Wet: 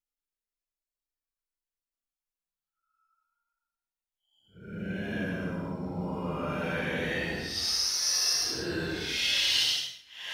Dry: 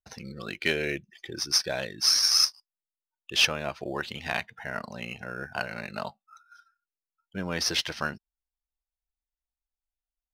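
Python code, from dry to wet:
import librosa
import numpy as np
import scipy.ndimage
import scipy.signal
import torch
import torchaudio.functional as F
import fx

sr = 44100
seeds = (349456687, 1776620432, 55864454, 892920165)

y = fx.paulstretch(x, sr, seeds[0], factor=11.0, window_s=0.05, from_s=6.92)
y = y * librosa.db_to_amplitude(-1.5)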